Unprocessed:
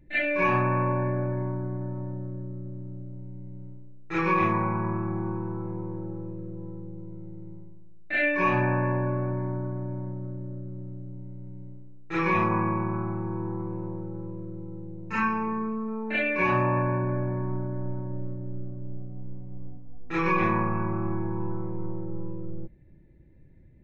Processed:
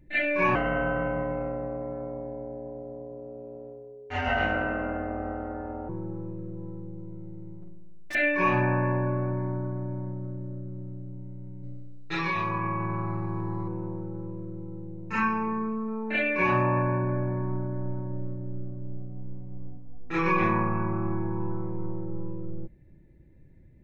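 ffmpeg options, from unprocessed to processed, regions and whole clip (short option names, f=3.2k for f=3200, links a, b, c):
-filter_complex "[0:a]asettb=1/sr,asplit=3[a][b][c];[a]atrim=end=0.554[d];[b]atrim=start=0.55:end=5.89,asetpts=PTS-STARTPTS,afade=t=in:d=0.004:c=qsin,afade=t=out:st=5.336:d=0.004:c=qsin,aeval=exprs='val(0)*sin(2*PI*420*n/s)':c=same,aecho=1:1:103|206|309|412|515:0.251|0.128|0.0653|0.0333|0.017,atrim=end_sample=235494[e];[c]atrim=start=5.886[f];[d][e]acrossfade=d=0.004:c1=hsin:c2=qsin[g];[g][f]acrossfade=d=0.004:c1=qsin:c2=hsin,asettb=1/sr,asplit=3[h][i][j];[h]atrim=end=7.614[k];[i]atrim=start=7.61:end=8.15,asetpts=PTS-STARTPTS,afade=t=in:d=0.004:c=qsin,afade=t=out:st=0.536:d=0.004:c=qsin,aecho=1:1:5.5:0.46,atrim=end_sample=23814,asoftclip=type=hard:threshold=-34.5dB[l];[j]atrim=start=8.146[m];[k][l]acrossfade=d=0.004:c1=hsin:c2=qsin[n];[n][m]acrossfade=d=0.004:c1=qsin:c2=hsin,asettb=1/sr,asplit=3[o][p][q];[o]atrim=end=11.634[r];[p]atrim=start=11.63:end=13.68,asetpts=PTS-STARTPTS,afade=t=in:d=0.004:c=qsin,afade=t=out:st=2.046:d=0.004:c=qsin,equalizer=f=4.1k:t=o:w=0.88:g=14,aecho=1:1:7.1:0.65,atrim=end_sample=90405,acompressor=threshold=-25dB:ratio=5:attack=3.2:release=140:knee=1:detection=peak[s];[q]atrim=start=13.676[t];[r][s]acrossfade=d=0.004:c1=hsin:c2=qsin[u];[u][t]acrossfade=d=0.004:c1=qsin:c2=hsin"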